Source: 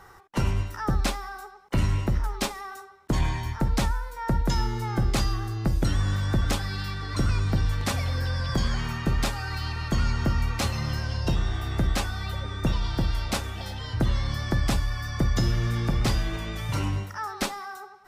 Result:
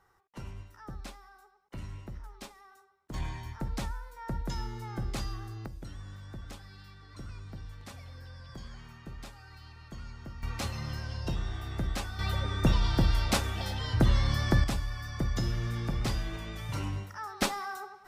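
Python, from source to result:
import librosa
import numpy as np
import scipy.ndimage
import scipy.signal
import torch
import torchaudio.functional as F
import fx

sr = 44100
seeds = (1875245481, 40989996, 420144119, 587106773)

y = fx.gain(x, sr, db=fx.steps((0.0, -18.0), (3.14, -10.5), (5.66, -19.5), (10.43, -8.0), (12.19, 0.5), (14.64, -7.0), (17.42, 0.0)))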